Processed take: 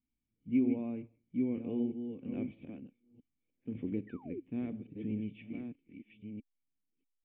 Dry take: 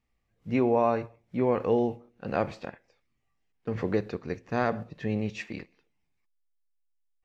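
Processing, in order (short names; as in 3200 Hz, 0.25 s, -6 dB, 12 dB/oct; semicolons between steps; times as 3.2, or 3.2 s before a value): reverse delay 0.64 s, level -7 dB; painted sound fall, 4.07–4.4, 320–2000 Hz -28 dBFS; vocal tract filter i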